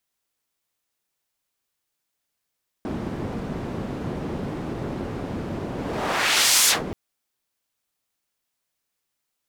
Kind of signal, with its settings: whoosh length 4.08 s, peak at 3.82 s, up 0.99 s, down 0.17 s, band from 240 Hz, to 7.4 kHz, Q 0.77, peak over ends 13.5 dB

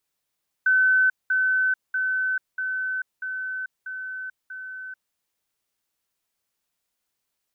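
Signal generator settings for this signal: level ladder 1.52 kHz -15.5 dBFS, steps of -3 dB, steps 7, 0.44 s 0.20 s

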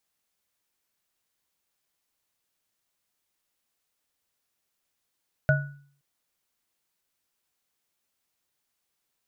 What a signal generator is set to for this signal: sine partials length 0.52 s, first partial 141 Hz, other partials 626/1470 Hz, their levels -3/-3.5 dB, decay 0.55 s, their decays 0.25/0.41 s, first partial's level -17 dB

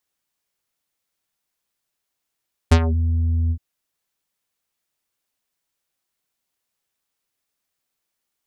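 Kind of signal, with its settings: synth note square E2 24 dB/octave, low-pass 200 Hz, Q 0.93, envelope 6 oct, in 0.23 s, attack 11 ms, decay 0.07 s, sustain -10.5 dB, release 0.07 s, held 0.80 s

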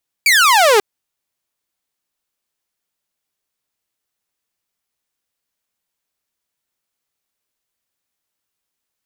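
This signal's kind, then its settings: laser zap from 2.4 kHz, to 390 Hz, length 0.54 s saw, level -6 dB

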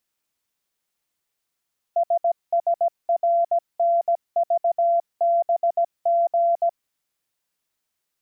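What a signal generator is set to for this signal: Morse "SSRNVBG" 17 wpm 683 Hz -16 dBFS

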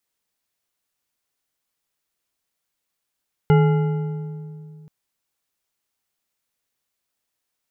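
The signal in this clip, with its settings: metal hit bar, length 1.38 s, lowest mode 155 Hz, modes 6, decay 2.66 s, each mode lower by 5.5 dB, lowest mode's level -11 dB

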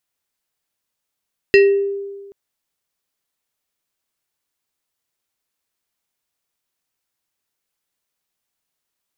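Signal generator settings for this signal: FM tone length 0.78 s, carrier 398 Hz, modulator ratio 5.75, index 0.88, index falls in 0.51 s exponential, decay 1.42 s, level -5 dB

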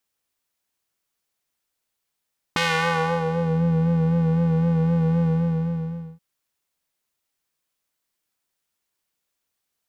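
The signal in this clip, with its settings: synth patch with vibrato E3, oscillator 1 square, oscillator 2 saw, interval +19 st, detune 29 cents, oscillator 2 level -11 dB, filter bandpass, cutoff 180 Hz, Q 0.89, filter envelope 4 oct, filter decay 1.07 s, filter sustain 10%, attack 1.8 ms, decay 0.69 s, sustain -9 dB, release 0.95 s, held 2.68 s, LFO 3.9 Hz, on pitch 38 cents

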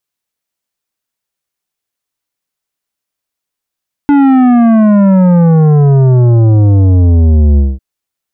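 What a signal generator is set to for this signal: sub drop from 290 Hz, over 3.70 s, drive 11 dB, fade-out 0.21 s, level -5 dB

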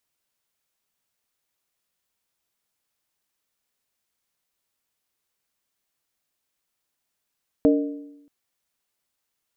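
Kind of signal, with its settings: skin hit, lowest mode 288 Hz, modes 3, decay 0.91 s, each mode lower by 4 dB, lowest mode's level -13 dB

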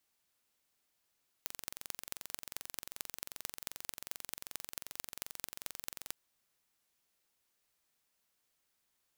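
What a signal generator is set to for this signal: pulse train 22.6 per s, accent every 5, -10 dBFS 4.67 s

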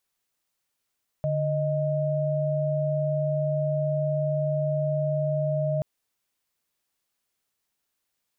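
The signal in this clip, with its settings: chord D3/D#5 sine, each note -25.5 dBFS 4.58 s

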